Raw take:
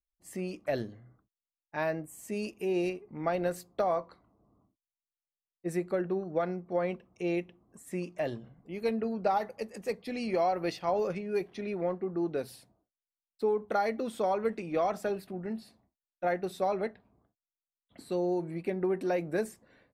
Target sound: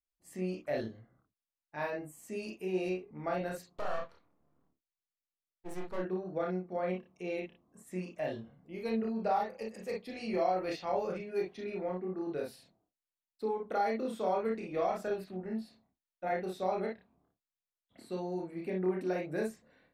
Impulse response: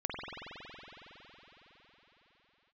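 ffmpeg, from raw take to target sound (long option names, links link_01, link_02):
-filter_complex "[0:a]asplit=3[link_01][link_02][link_03];[link_01]afade=type=out:start_time=3.74:duration=0.02[link_04];[link_02]aeval=exprs='max(val(0),0)':channel_layout=same,afade=type=in:start_time=3.74:duration=0.02,afade=type=out:start_time=5.97:duration=0.02[link_05];[link_03]afade=type=in:start_time=5.97:duration=0.02[link_06];[link_04][link_05][link_06]amix=inputs=3:normalize=0[link_07];[1:a]atrim=start_sample=2205,afade=type=out:start_time=0.16:duration=0.01,atrim=end_sample=7497,asetrate=74970,aresample=44100[link_08];[link_07][link_08]afir=irnorm=-1:irlink=0"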